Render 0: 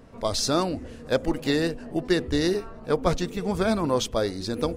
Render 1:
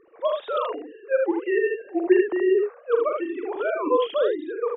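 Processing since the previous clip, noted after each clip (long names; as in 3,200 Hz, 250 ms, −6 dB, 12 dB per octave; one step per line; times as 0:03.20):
three sine waves on the formant tracks
ambience of single reflections 42 ms −7 dB, 78 ms −4 dB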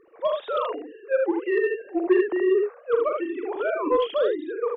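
soft clipping −10 dBFS, distortion −22 dB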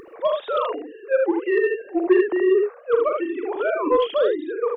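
upward compression, threshold −38 dBFS
level +3 dB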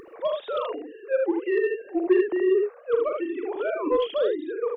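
dynamic equaliser 1,200 Hz, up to −5 dB, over −34 dBFS, Q 0.78
level −2.5 dB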